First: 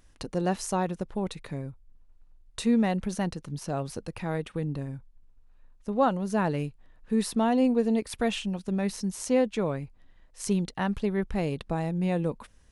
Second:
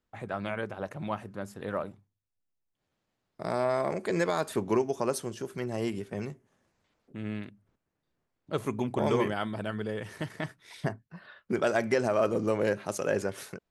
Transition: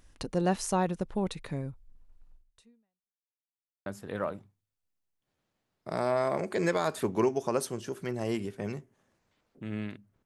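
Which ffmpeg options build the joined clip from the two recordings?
ffmpeg -i cue0.wav -i cue1.wav -filter_complex "[0:a]apad=whole_dur=10.25,atrim=end=10.25,asplit=2[link_01][link_02];[link_01]atrim=end=3.26,asetpts=PTS-STARTPTS,afade=type=out:start_time=2.35:duration=0.91:curve=exp[link_03];[link_02]atrim=start=3.26:end=3.86,asetpts=PTS-STARTPTS,volume=0[link_04];[1:a]atrim=start=1.39:end=7.78,asetpts=PTS-STARTPTS,afade=type=in:duration=0.004:curve=hsin[link_05];[link_03][link_04][link_05]concat=n=3:v=0:a=1" out.wav

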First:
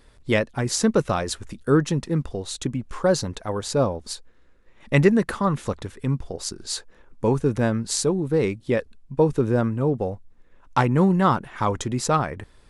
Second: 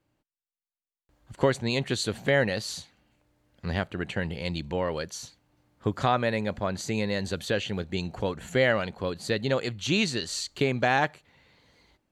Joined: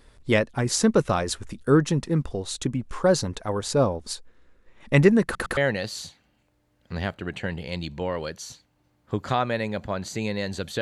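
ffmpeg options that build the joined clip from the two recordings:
ffmpeg -i cue0.wav -i cue1.wav -filter_complex "[0:a]apad=whole_dur=10.81,atrim=end=10.81,asplit=3[link_01][link_02][link_03];[link_01]atrim=end=5.352[link_04];[link_02]atrim=start=5.238:end=5.352[link_05];[link_03]atrim=start=5.238:end=5.352[link_06];[1:a]atrim=start=2.298:end=7.54[link_07];[link_04][link_05]acrossfade=duration=0.004:curve1=hsin:curve2=hsin[link_08];[link_08][link_06]acrossfade=duration=0.004:curve1=hsin:curve2=hsin[link_09];[link_09][link_07]acrossfade=duration=0.004:curve1=hsin:curve2=hsin" out.wav

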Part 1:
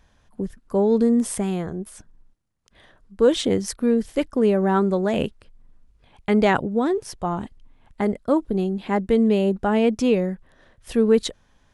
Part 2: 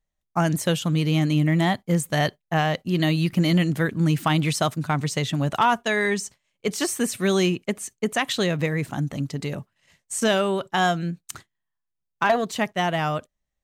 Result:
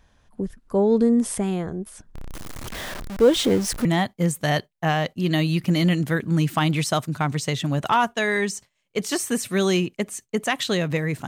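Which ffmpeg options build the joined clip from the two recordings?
ffmpeg -i cue0.wav -i cue1.wav -filter_complex "[0:a]asettb=1/sr,asplit=3[link_01][link_02][link_03];[link_01]atrim=end=2.154[link_04];[link_02]atrim=start=2.15:end=3.85,asetpts=PTS-STARTPTS,afade=type=in:duration=0.004:curve=qsin,afade=type=out:start_time=1.696:duration=0.004:curve=qsin,aeval=exprs='val(0)+0.5*0.0447*sgn(val(0))':channel_layout=same[link_05];[link_03]atrim=start=3.846[link_06];[link_04][link_05]acrossfade=duration=0.004:curve1=hsin:curve2=qsin[link_07];[link_07][link_06]acrossfade=duration=0.004:curve1=qsin:curve2=hsin,apad=whole_dur=11.27,atrim=end=11.27,atrim=end=3.852[link_08];[1:a]atrim=start=1.538:end=8.96[link_09];[link_08][link_09]acrossfade=duration=0.004:curve1=hsin:curve2=hsin" out.wav

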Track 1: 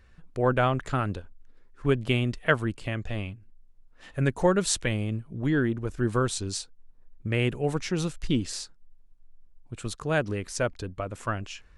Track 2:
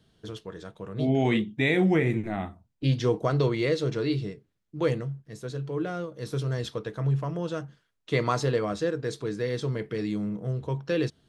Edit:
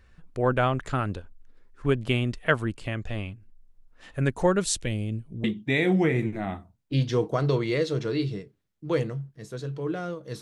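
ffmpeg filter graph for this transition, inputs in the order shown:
ffmpeg -i cue0.wav -i cue1.wav -filter_complex "[0:a]asettb=1/sr,asplit=3[link_01][link_02][link_03];[link_01]atrim=end=4.644[link_04];[link_02]atrim=start=4.64:end=5.44,asetpts=PTS-STARTPTS,afade=type=in:duration=0.004:curve=qsin,afade=type=out:start_time=0.796:duration=0.004:curve=qsin,equalizer=frequency=1200:width_type=o:width=1.5:gain=-12[link_05];[link_03]atrim=start=5.436[link_06];[link_04][link_05]acrossfade=duration=0.004:curve1=hsin:curve2=qsin[link_07];[link_07][link_06]acrossfade=duration=0.004:curve1=qsin:curve2=hsin,apad=whole_dur=10.41,atrim=end=10.41,atrim=end=5.442[link_08];[1:a]atrim=start=1.348:end=6.32[link_09];[link_08][link_09]acrossfade=duration=0.004:curve1=hsin:curve2=hsin" out.wav

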